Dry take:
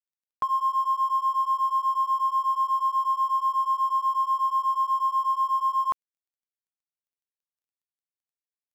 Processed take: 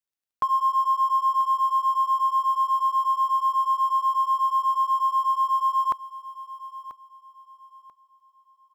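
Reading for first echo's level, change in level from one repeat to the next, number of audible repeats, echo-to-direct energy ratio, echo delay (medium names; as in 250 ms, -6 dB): -15.0 dB, -11.0 dB, 2, -14.5 dB, 988 ms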